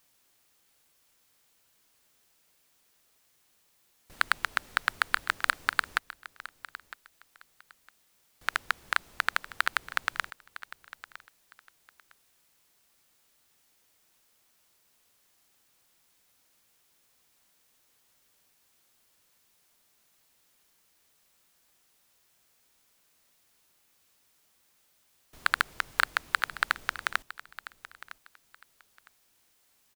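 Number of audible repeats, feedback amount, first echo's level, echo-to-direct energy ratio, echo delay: 2, 21%, -16.5 dB, -16.5 dB, 958 ms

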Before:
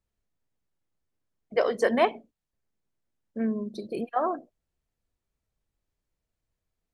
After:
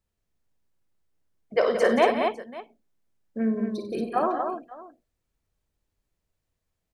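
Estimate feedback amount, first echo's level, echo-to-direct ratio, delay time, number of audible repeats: no regular repeats, -9.0 dB, -2.5 dB, 54 ms, 5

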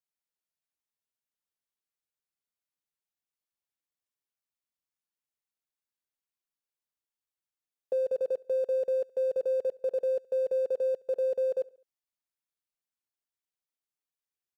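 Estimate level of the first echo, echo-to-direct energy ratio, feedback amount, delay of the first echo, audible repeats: -24.0 dB, -23.0 dB, 48%, 70 ms, 2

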